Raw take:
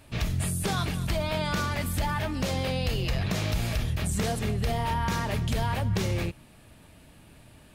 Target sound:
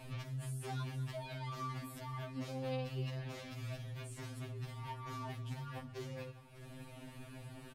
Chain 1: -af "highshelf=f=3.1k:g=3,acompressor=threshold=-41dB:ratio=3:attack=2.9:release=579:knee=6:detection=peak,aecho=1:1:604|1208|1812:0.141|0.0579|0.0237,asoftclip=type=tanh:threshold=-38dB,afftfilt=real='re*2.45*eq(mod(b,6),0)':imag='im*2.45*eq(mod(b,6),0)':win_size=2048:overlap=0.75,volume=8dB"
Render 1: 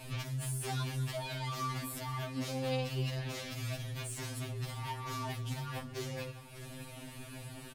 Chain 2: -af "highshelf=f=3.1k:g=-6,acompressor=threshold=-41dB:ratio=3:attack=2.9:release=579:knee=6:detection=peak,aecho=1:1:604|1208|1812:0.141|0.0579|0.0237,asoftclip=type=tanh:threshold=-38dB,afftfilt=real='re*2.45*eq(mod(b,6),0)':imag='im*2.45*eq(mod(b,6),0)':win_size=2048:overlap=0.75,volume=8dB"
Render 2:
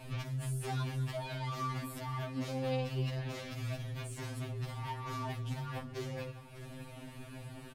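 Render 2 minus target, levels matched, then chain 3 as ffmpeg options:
compressor: peak gain reduction -6.5 dB
-af "highshelf=f=3.1k:g=-6,acompressor=threshold=-51dB:ratio=3:attack=2.9:release=579:knee=6:detection=peak,aecho=1:1:604|1208|1812:0.141|0.0579|0.0237,asoftclip=type=tanh:threshold=-38dB,afftfilt=real='re*2.45*eq(mod(b,6),0)':imag='im*2.45*eq(mod(b,6),0)':win_size=2048:overlap=0.75,volume=8dB"

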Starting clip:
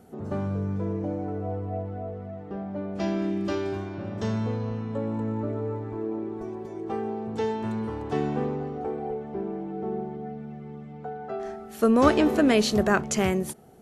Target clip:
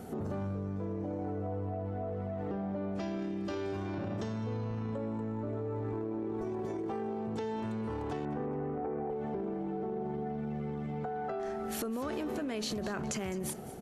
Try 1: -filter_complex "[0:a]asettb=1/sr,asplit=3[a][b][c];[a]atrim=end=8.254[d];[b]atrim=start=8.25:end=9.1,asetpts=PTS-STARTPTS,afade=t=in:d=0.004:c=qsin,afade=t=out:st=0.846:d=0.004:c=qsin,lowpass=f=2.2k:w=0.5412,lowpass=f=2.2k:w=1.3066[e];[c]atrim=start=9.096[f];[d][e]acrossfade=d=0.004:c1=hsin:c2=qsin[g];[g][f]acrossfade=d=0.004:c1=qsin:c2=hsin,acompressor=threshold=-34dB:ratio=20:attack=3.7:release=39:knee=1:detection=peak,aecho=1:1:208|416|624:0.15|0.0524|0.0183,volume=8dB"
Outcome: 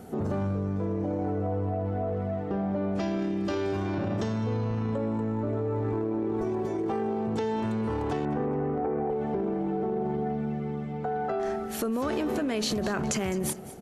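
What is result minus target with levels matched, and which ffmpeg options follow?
compressor: peak gain reduction -7 dB
-filter_complex "[0:a]asettb=1/sr,asplit=3[a][b][c];[a]atrim=end=8.254[d];[b]atrim=start=8.25:end=9.1,asetpts=PTS-STARTPTS,afade=t=in:d=0.004:c=qsin,afade=t=out:st=0.846:d=0.004:c=qsin,lowpass=f=2.2k:w=0.5412,lowpass=f=2.2k:w=1.3066[e];[c]atrim=start=9.096[f];[d][e]acrossfade=d=0.004:c1=hsin:c2=qsin[g];[g][f]acrossfade=d=0.004:c1=qsin:c2=hsin,acompressor=threshold=-41.5dB:ratio=20:attack=3.7:release=39:knee=1:detection=peak,aecho=1:1:208|416|624:0.15|0.0524|0.0183,volume=8dB"

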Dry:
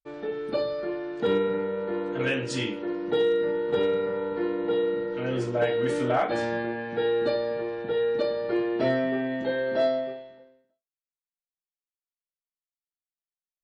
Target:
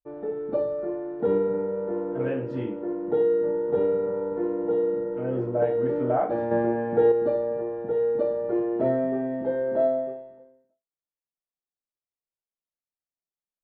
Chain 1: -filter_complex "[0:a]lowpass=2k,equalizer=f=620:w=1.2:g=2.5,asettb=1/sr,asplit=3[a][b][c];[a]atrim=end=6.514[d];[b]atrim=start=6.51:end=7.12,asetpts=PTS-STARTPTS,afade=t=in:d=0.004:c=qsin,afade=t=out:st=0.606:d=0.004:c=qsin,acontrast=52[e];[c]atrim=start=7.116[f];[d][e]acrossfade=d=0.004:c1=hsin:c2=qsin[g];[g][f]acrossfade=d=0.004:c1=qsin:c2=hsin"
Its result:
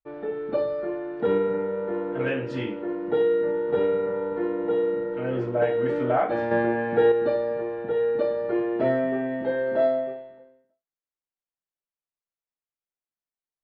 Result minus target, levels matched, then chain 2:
2000 Hz band +9.0 dB
-filter_complex "[0:a]lowpass=900,equalizer=f=620:w=1.2:g=2.5,asettb=1/sr,asplit=3[a][b][c];[a]atrim=end=6.514[d];[b]atrim=start=6.51:end=7.12,asetpts=PTS-STARTPTS,afade=t=in:d=0.004:c=qsin,afade=t=out:st=0.606:d=0.004:c=qsin,acontrast=52[e];[c]atrim=start=7.116[f];[d][e]acrossfade=d=0.004:c1=hsin:c2=qsin[g];[g][f]acrossfade=d=0.004:c1=qsin:c2=hsin"

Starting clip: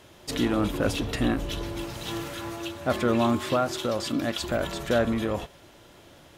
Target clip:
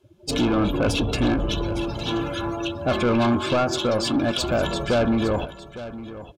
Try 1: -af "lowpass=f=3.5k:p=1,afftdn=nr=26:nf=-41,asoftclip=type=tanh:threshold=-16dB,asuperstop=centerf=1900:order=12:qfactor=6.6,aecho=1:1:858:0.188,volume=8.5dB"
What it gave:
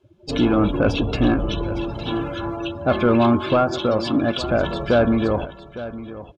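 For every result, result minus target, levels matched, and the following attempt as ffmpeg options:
soft clip: distortion -10 dB; 4000 Hz band -5.0 dB
-af "lowpass=f=3.5k:p=1,afftdn=nr=26:nf=-41,asoftclip=type=tanh:threshold=-24.5dB,asuperstop=centerf=1900:order=12:qfactor=6.6,aecho=1:1:858:0.188,volume=8.5dB"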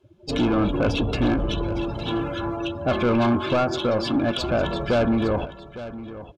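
4000 Hz band -3.0 dB
-af "afftdn=nr=26:nf=-41,asoftclip=type=tanh:threshold=-24.5dB,asuperstop=centerf=1900:order=12:qfactor=6.6,aecho=1:1:858:0.188,volume=8.5dB"

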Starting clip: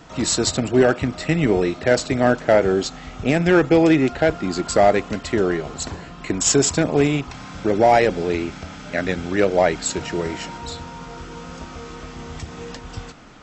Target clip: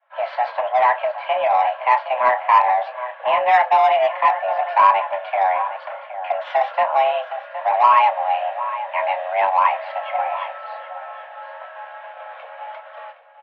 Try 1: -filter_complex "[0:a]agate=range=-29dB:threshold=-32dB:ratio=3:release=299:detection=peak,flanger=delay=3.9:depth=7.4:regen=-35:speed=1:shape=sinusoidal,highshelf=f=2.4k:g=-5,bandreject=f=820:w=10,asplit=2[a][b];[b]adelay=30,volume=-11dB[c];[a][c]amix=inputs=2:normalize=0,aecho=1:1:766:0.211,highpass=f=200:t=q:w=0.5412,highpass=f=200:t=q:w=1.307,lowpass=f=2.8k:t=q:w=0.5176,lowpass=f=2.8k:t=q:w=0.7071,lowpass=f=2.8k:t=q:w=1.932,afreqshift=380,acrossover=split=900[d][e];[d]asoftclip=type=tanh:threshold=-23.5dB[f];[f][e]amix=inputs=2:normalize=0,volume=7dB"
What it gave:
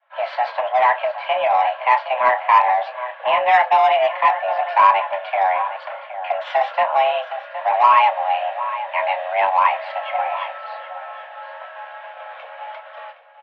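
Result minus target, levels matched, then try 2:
4000 Hz band +3.0 dB
-filter_complex "[0:a]agate=range=-29dB:threshold=-32dB:ratio=3:release=299:detection=peak,flanger=delay=3.9:depth=7.4:regen=-35:speed=1:shape=sinusoidal,highshelf=f=2.4k:g=-12,bandreject=f=820:w=10,asplit=2[a][b];[b]adelay=30,volume=-11dB[c];[a][c]amix=inputs=2:normalize=0,aecho=1:1:766:0.211,highpass=f=200:t=q:w=0.5412,highpass=f=200:t=q:w=1.307,lowpass=f=2.8k:t=q:w=0.5176,lowpass=f=2.8k:t=q:w=0.7071,lowpass=f=2.8k:t=q:w=1.932,afreqshift=380,acrossover=split=900[d][e];[d]asoftclip=type=tanh:threshold=-23.5dB[f];[f][e]amix=inputs=2:normalize=0,volume=7dB"

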